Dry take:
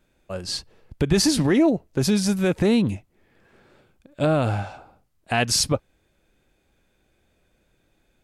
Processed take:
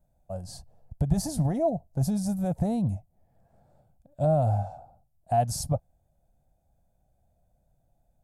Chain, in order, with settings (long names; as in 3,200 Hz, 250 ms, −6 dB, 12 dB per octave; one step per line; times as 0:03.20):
drawn EQ curve 150 Hz 0 dB, 390 Hz −20 dB, 700 Hz +3 dB, 1,100 Hz −17 dB, 2,600 Hz −28 dB, 8,000 Hz −10 dB, 13,000 Hz −5 dB